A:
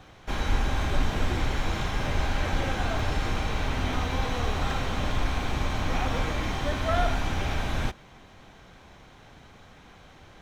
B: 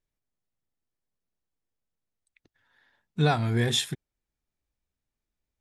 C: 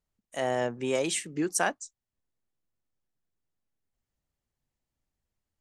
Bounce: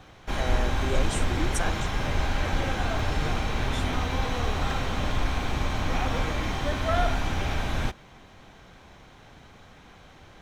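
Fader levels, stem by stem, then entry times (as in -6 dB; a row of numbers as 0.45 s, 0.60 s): +0.5 dB, -14.0 dB, -5.0 dB; 0.00 s, 0.00 s, 0.00 s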